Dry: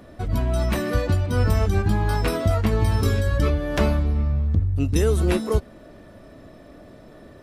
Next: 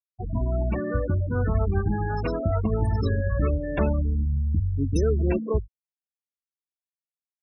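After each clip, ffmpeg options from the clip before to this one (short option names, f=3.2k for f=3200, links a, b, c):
-af "bandreject=f=50:t=h:w=6,bandreject=f=100:t=h:w=6,afftfilt=real='re*gte(hypot(re,im),0.1)':imag='im*gte(hypot(re,im),0.1)':win_size=1024:overlap=0.75,volume=-2.5dB"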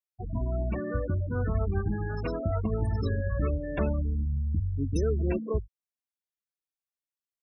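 -af "bandreject=f=850:w=12,volume=-4.5dB"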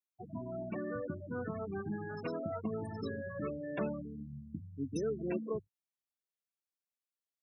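-af "highpass=f=140:w=0.5412,highpass=f=140:w=1.3066,volume=-5.5dB"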